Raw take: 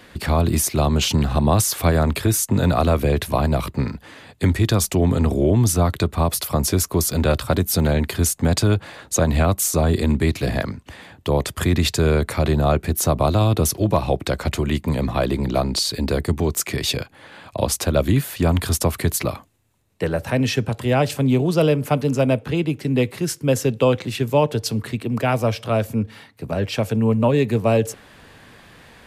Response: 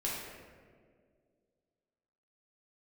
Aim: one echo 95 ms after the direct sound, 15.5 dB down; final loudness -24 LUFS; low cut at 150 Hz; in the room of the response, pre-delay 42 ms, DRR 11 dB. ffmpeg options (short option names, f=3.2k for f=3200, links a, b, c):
-filter_complex "[0:a]highpass=150,aecho=1:1:95:0.168,asplit=2[a][b];[1:a]atrim=start_sample=2205,adelay=42[c];[b][c]afir=irnorm=-1:irlink=0,volume=-15.5dB[d];[a][d]amix=inputs=2:normalize=0,volume=-2.5dB"